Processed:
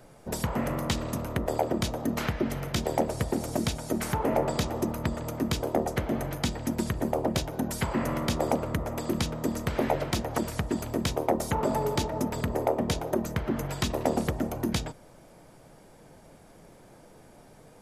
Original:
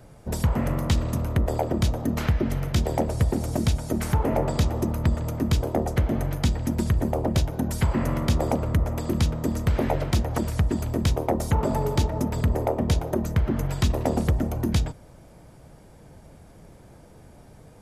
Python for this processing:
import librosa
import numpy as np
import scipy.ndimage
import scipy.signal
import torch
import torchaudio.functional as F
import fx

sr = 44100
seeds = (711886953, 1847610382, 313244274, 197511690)

y = fx.peak_eq(x, sr, hz=64.0, db=-13.5, octaves=2.2)